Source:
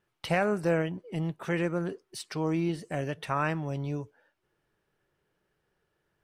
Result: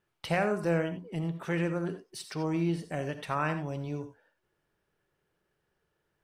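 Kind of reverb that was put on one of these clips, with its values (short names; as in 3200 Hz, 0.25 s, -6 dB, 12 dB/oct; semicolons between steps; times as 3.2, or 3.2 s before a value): non-linear reverb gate 0.11 s rising, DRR 9 dB; gain -2 dB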